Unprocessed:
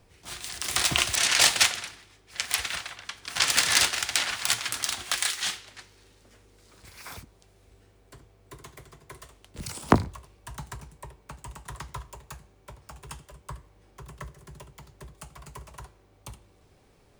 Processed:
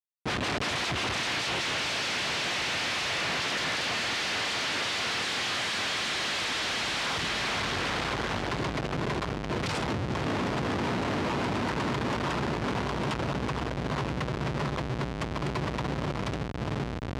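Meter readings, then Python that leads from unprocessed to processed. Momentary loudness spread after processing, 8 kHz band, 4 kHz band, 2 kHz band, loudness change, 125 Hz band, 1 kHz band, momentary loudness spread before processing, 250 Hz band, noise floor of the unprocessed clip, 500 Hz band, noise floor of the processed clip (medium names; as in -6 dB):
4 LU, -10.0 dB, -1.5 dB, +1.5 dB, -5.0 dB, +7.0 dB, +4.5 dB, 23 LU, +6.0 dB, -60 dBFS, +7.5 dB, -34 dBFS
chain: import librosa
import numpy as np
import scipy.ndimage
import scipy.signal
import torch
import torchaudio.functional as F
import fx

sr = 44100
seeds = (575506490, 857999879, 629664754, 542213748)

y = fx.dynamic_eq(x, sr, hz=1200.0, q=0.82, threshold_db=-37.0, ratio=4.0, max_db=-4)
y = fx.echo_diffused(y, sr, ms=470, feedback_pct=67, wet_db=-3)
y = fx.rider(y, sr, range_db=10, speed_s=0.5)
y = fx.schmitt(y, sr, flips_db=-33.5)
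y = fx.bandpass_edges(y, sr, low_hz=100.0, high_hz=4500.0)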